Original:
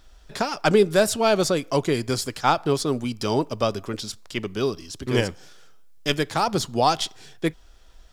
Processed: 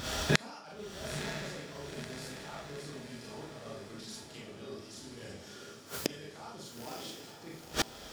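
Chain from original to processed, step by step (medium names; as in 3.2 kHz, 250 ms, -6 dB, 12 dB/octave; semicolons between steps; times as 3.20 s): one-sided wavefolder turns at -11.5 dBFS; recorder AGC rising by 41 dB/s; high-pass 70 Hz 24 dB/octave; reverse; compression 8:1, threshold -33 dBFS, peak gain reduction 25 dB; reverse; vibrato 2.3 Hz 17 cents; Schroeder reverb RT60 0.51 s, combs from 27 ms, DRR -5.5 dB; inverted gate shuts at -32 dBFS, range -34 dB; on a send: echo that smears into a reverb 970 ms, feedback 56%, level -7.5 dB; on the sum: trim +17 dB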